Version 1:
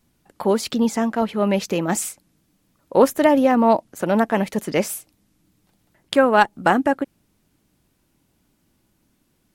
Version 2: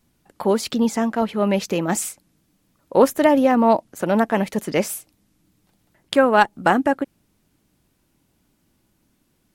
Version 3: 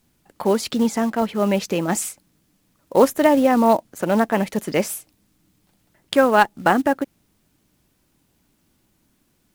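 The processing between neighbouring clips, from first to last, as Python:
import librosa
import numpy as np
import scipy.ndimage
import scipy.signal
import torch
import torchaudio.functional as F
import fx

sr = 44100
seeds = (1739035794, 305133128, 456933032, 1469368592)

y1 = x
y2 = fx.quant_companded(y1, sr, bits=6)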